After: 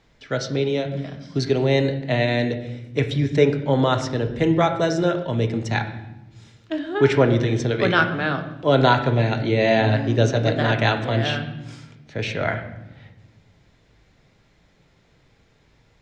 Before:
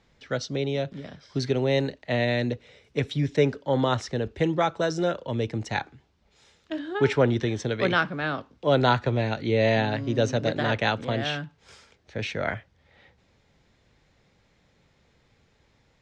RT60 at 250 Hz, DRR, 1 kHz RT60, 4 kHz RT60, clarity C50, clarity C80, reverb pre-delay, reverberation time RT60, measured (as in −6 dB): 1.9 s, 6.0 dB, 0.80 s, 0.80 s, 10.0 dB, 12.5 dB, 3 ms, 1.0 s